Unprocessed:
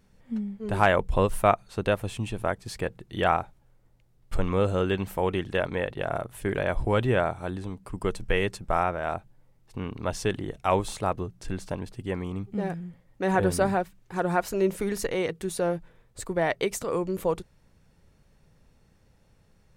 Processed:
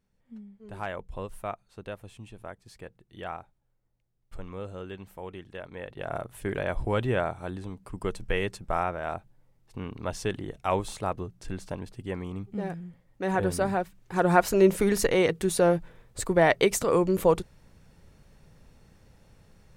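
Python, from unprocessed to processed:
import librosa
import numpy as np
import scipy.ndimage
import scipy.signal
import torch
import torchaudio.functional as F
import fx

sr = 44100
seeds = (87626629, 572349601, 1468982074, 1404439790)

y = fx.gain(x, sr, db=fx.line((5.66, -14.0), (6.16, -3.0), (13.66, -3.0), (14.36, 5.0)))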